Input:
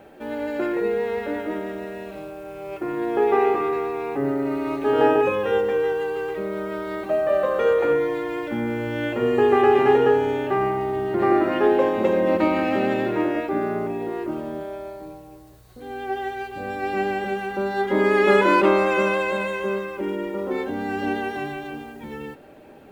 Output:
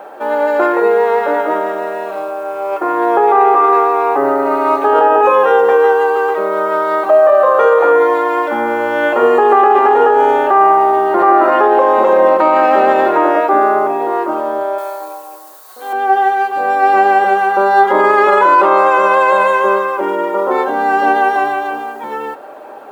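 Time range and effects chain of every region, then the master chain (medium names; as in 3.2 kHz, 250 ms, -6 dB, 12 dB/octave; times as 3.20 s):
14.78–15.93 s: tilt EQ +3.5 dB/octave + AM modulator 250 Hz, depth 15%
whole clip: high-pass 730 Hz 12 dB/octave; resonant high shelf 1.6 kHz -10.5 dB, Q 1.5; loudness maximiser +20.5 dB; trim -1 dB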